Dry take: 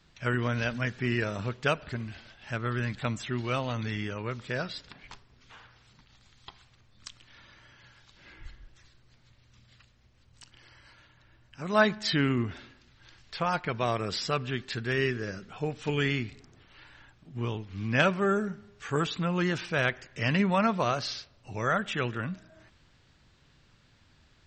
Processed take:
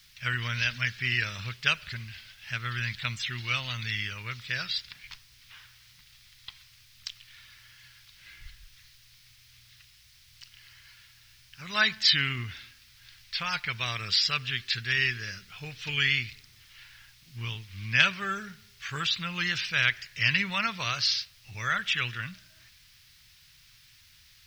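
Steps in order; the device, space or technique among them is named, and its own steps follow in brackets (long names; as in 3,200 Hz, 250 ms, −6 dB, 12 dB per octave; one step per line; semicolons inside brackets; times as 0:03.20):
plain cassette with noise reduction switched in (one half of a high-frequency compander decoder only; tape wow and flutter 28 cents; white noise bed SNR 30 dB)
drawn EQ curve 120 Hz 0 dB, 280 Hz −14 dB, 710 Hz −12 dB, 2,100 Hz +10 dB, 5,200 Hz +13 dB, 7,400 Hz +1 dB
level −2.5 dB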